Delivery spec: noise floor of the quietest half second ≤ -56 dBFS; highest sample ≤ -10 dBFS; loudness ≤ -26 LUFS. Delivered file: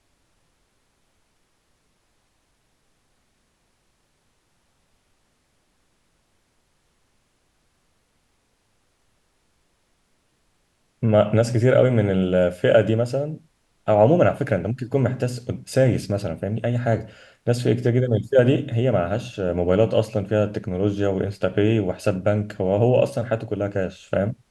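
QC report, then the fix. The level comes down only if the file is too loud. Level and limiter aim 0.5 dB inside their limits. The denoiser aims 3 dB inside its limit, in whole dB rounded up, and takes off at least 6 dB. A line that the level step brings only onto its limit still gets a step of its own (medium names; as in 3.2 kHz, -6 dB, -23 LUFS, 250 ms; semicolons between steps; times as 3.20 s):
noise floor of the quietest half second -67 dBFS: pass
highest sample -4.0 dBFS: fail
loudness -21.5 LUFS: fail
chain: trim -5 dB; peak limiter -10.5 dBFS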